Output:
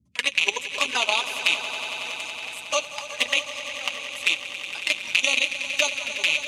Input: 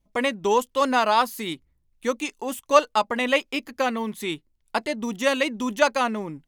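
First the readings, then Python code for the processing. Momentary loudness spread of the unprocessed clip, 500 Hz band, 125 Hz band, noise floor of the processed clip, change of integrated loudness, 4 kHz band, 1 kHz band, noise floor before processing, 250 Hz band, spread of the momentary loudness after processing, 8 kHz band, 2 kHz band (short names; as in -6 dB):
11 LU, -10.5 dB, under -10 dB, -39 dBFS, 0.0 dB, +8.0 dB, -10.0 dB, -69 dBFS, -18.0 dB, 9 LU, +6.0 dB, +4.5 dB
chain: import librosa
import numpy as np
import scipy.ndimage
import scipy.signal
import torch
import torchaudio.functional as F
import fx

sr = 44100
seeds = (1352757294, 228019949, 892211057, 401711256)

p1 = fx.rattle_buzz(x, sr, strikes_db=-44.0, level_db=-8.0)
p2 = fx.weighting(p1, sr, curve='ITU-R 468')
p3 = fx.hpss(p2, sr, part='percussive', gain_db=-5)
p4 = fx.high_shelf(p3, sr, hz=7400.0, db=6.0)
p5 = fx.level_steps(p4, sr, step_db=19)
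p6 = fx.transient(p5, sr, attack_db=4, sustain_db=0)
p7 = fx.env_flanger(p6, sr, rest_ms=3.7, full_db=-17.0)
p8 = fx.notch_comb(p7, sr, f0_hz=180.0)
p9 = fx.dmg_noise_band(p8, sr, seeds[0], low_hz=64.0, high_hz=230.0, level_db=-65.0)
y = p9 + fx.echo_swell(p9, sr, ms=92, loudest=5, wet_db=-14.5, dry=0)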